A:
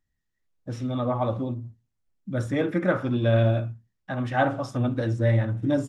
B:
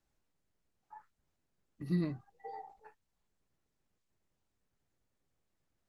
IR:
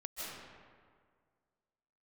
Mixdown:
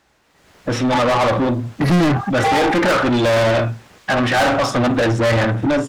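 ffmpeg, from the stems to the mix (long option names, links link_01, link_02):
-filter_complex "[0:a]volume=-12.5dB[link_01];[1:a]equalizer=frequency=62:width=0.82:gain=10,dynaudnorm=framelen=240:gausssize=3:maxgain=6dB,volume=-1dB[link_02];[link_01][link_02]amix=inputs=2:normalize=0,highshelf=frequency=5400:gain=-8.5,dynaudnorm=framelen=170:gausssize=5:maxgain=10dB,asplit=2[link_03][link_04];[link_04]highpass=frequency=720:poles=1,volume=36dB,asoftclip=type=tanh:threshold=-8.5dB[link_05];[link_03][link_05]amix=inputs=2:normalize=0,lowpass=frequency=6300:poles=1,volume=-6dB"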